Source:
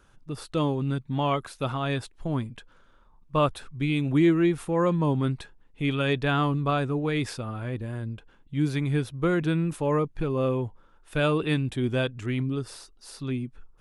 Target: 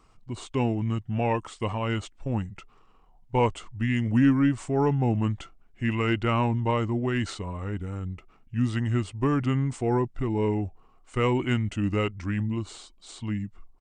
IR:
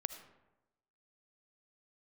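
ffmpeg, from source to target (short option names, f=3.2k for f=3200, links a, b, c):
-af "aeval=exprs='0.266*(cos(1*acos(clip(val(0)/0.266,-1,1)))-cos(1*PI/2))+0.00531*(cos(4*acos(clip(val(0)/0.266,-1,1)))-cos(4*PI/2))':c=same,asetrate=36028,aresample=44100,atempo=1.22405"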